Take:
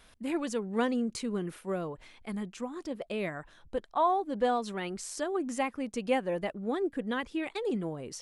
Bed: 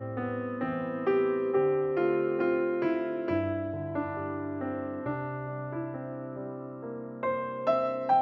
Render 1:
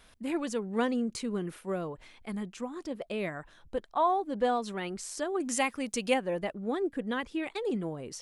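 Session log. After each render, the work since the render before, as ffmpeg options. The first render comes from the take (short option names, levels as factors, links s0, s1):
-filter_complex "[0:a]asettb=1/sr,asplit=3[s0][s1][s2];[s0]atrim=end=5.404[s3];[s1]atrim=start=5.4:end=6.14,asetpts=PTS-STARTPTS,afade=t=in:d=0.004:c=qsin,afade=t=out:st=0.736:d=0.004:c=qsin,highshelf=f=2200:g=11.5[s4];[s2]atrim=start=6.136[s5];[s3][s4]acrossfade=d=0.004:c1=hsin:c2=qsin[s6];[s6][s5]acrossfade=d=0.004:c1=qsin:c2=hsin"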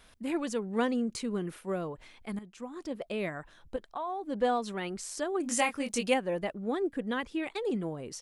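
-filter_complex "[0:a]asettb=1/sr,asplit=3[s0][s1][s2];[s0]atrim=end=3.764[s3];[s1]atrim=start=3.76:end=4.27,asetpts=PTS-STARTPTS,afade=t=in:d=0.004:c=qsin,afade=t=out:st=0.506:d=0.004:c=qsin,acompressor=threshold=0.0224:ratio=5:attack=3.2:release=140:knee=1:detection=peak[s4];[s2]atrim=start=4.266[s5];[s3][s4]acrossfade=d=0.004:c1=hsin:c2=qsin[s6];[s6][s5]acrossfade=d=0.004:c1=qsin:c2=hsin,asplit=3[s7][s8][s9];[s7]afade=t=out:st=5.43:d=0.02[s10];[s8]asplit=2[s11][s12];[s12]adelay=21,volume=0.562[s13];[s11][s13]amix=inputs=2:normalize=0,afade=t=in:st=5.43:d=0.02,afade=t=out:st=6.04:d=0.02[s14];[s9]afade=t=in:st=6.04:d=0.02[s15];[s10][s14][s15]amix=inputs=3:normalize=0,asplit=2[s16][s17];[s16]atrim=end=2.39,asetpts=PTS-STARTPTS,afade=t=out:st=2.386:d=0.004:c=hsin:silence=0.223872[s18];[s17]atrim=start=2.39,asetpts=PTS-STARTPTS,afade=t=in:d=0.51:silence=0.223872[s19];[s18][s19]concat=n=2:v=0:a=1"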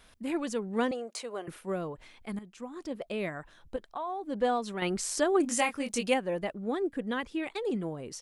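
-filter_complex "[0:a]asettb=1/sr,asplit=3[s0][s1][s2];[s0]atrim=end=0.914[s3];[s1]atrim=start=0.91:end=1.48,asetpts=PTS-STARTPTS,afade=t=in:d=0.004:c=qsin,afade=t=out:st=0.566:d=0.004:c=qsin,highpass=f=640:t=q:w=3.3[s4];[s2]atrim=start=1.476[s5];[s3][s4]acrossfade=d=0.004:c1=hsin:c2=qsin[s6];[s6][s5]acrossfade=d=0.004:c1=qsin:c2=hsin,asplit=3[s7][s8][s9];[s7]atrim=end=4.822[s10];[s8]atrim=start=4.818:end=5.452,asetpts=PTS-STARTPTS,volume=2.11[s11];[s9]atrim=start=5.448[s12];[s10][s11]acrossfade=d=0.004:c1=hsin:c2=hsin[s13];[s13][s12]acrossfade=d=0.004:c1=hsin:c2=hsin"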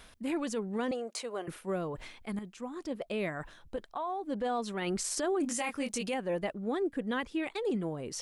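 -af "areverse,acompressor=mode=upward:threshold=0.0178:ratio=2.5,areverse,alimiter=level_in=1.06:limit=0.0631:level=0:latency=1:release=12,volume=0.944"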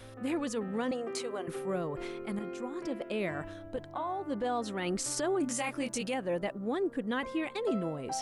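-filter_complex "[1:a]volume=0.2[s0];[0:a][s0]amix=inputs=2:normalize=0"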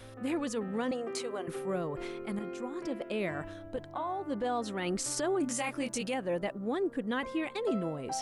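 -af anull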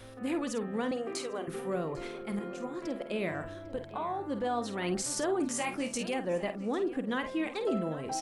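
-filter_complex "[0:a]asplit=2[s0][s1];[s1]adelay=50,volume=0.316[s2];[s0][s2]amix=inputs=2:normalize=0,asplit=2[s3][s4];[s4]adelay=799,lowpass=f=4000:p=1,volume=0.158,asplit=2[s5][s6];[s6]adelay=799,lowpass=f=4000:p=1,volume=0.48,asplit=2[s7][s8];[s8]adelay=799,lowpass=f=4000:p=1,volume=0.48,asplit=2[s9][s10];[s10]adelay=799,lowpass=f=4000:p=1,volume=0.48[s11];[s3][s5][s7][s9][s11]amix=inputs=5:normalize=0"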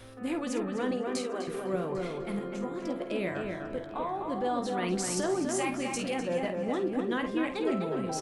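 -filter_complex "[0:a]asplit=2[s0][s1];[s1]adelay=16,volume=0.266[s2];[s0][s2]amix=inputs=2:normalize=0,asplit=2[s3][s4];[s4]adelay=252,lowpass=f=2400:p=1,volume=0.668,asplit=2[s5][s6];[s6]adelay=252,lowpass=f=2400:p=1,volume=0.35,asplit=2[s7][s8];[s8]adelay=252,lowpass=f=2400:p=1,volume=0.35,asplit=2[s9][s10];[s10]adelay=252,lowpass=f=2400:p=1,volume=0.35,asplit=2[s11][s12];[s12]adelay=252,lowpass=f=2400:p=1,volume=0.35[s13];[s3][s5][s7][s9][s11][s13]amix=inputs=6:normalize=0"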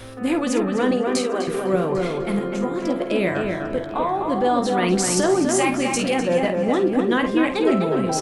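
-af "volume=3.55"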